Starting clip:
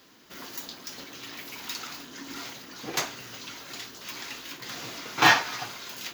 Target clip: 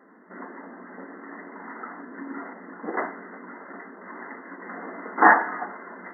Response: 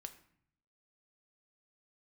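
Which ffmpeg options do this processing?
-filter_complex "[0:a]asplit=2[link_01][link_02];[1:a]atrim=start_sample=2205,lowpass=frequency=3000:width=0.5412,lowpass=frequency=3000:width=1.3066[link_03];[link_02][link_03]afir=irnorm=-1:irlink=0,volume=6dB[link_04];[link_01][link_04]amix=inputs=2:normalize=0,afftfilt=real='re*between(b*sr/4096,180,2100)':imag='im*between(b*sr/4096,180,2100)':win_size=4096:overlap=0.75"

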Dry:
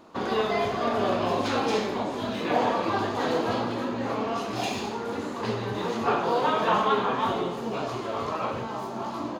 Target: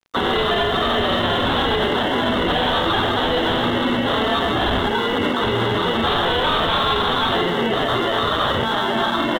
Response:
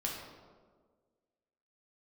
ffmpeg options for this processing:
-filter_complex "[0:a]highshelf=frequency=2300:gain=12,afftdn=noise_reduction=17:noise_floor=-34,acrossover=split=120[link_01][link_02];[link_02]acrusher=samples=18:mix=1:aa=0.000001[link_03];[link_01][link_03]amix=inputs=2:normalize=0,highpass=frequency=51:poles=1,equalizer=frequency=100:width=0.63:gain=-3.5,aresample=8000,asoftclip=type=tanh:threshold=-25dB,aresample=44100,asplit=2[link_04][link_05];[link_05]adelay=12,volume=-11dB[link_06];[link_04][link_06]amix=inputs=2:normalize=0,acrossover=split=120|3000[link_07][link_08][link_09];[link_08]acompressor=threshold=-43dB:ratio=2[link_10];[link_07][link_10][link_09]amix=inputs=3:normalize=0,aeval=exprs='sgn(val(0))*max(abs(val(0))-0.00106,0)':channel_layout=same,alimiter=level_in=33dB:limit=-1dB:release=50:level=0:latency=1,volume=-9dB"

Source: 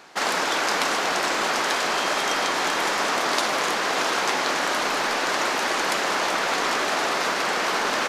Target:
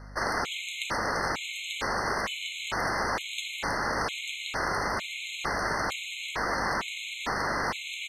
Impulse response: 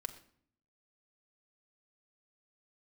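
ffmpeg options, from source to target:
-af "equalizer=frequency=1900:width=0.9:gain=5.5,afreqshift=-200,aeval=exprs='val(0)+0.0158*(sin(2*PI*50*n/s)+sin(2*PI*2*50*n/s)/2+sin(2*PI*3*50*n/s)/3+sin(2*PI*4*50*n/s)/4+sin(2*PI*5*50*n/s)/5)':channel_layout=same,afftfilt=real='re*gt(sin(2*PI*1.1*pts/sr)*(1-2*mod(floor(b*sr/1024/2100),2)),0)':imag='im*gt(sin(2*PI*1.1*pts/sr)*(1-2*mod(floor(b*sr/1024/2100),2)),0)':win_size=1024:overlap=0.75,volume=-7.5dB"

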